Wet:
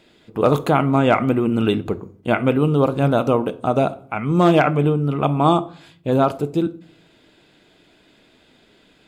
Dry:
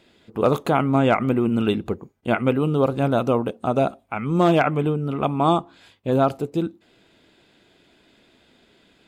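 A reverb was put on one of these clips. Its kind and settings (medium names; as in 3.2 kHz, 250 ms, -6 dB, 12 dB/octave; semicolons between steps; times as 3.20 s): simulated room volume 630 m³, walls furnished, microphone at 0.5 m; trim +2.5 dB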